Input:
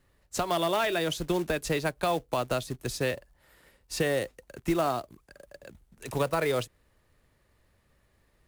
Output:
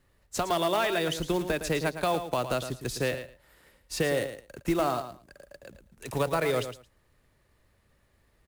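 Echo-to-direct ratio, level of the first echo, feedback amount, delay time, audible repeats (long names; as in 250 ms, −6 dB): −10.0 dB, −10.0 dB, 16%, 111 ms, 2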